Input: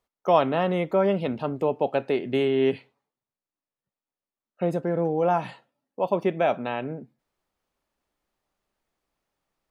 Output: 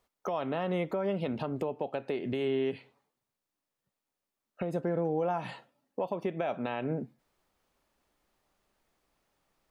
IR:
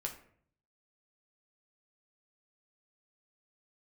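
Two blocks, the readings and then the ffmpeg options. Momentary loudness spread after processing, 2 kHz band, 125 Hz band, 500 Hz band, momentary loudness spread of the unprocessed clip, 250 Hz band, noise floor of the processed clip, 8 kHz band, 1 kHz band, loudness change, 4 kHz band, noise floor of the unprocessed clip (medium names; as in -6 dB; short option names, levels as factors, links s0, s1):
8 LU, -7.5 dB, -6.0 dB, -8.5 dB, 9 LU, -6.5 dB, under -85 dBFS, no reading, -10.0 dB, -8.5 dB, -8.0 dB, under -85 dBFS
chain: -af "acompressor=threshold=0.0282:ratio=10,alimiter=level_in=1.33:limit=0.0631:level=0:latency=1:release=158,volume=0.75,volume=1.78"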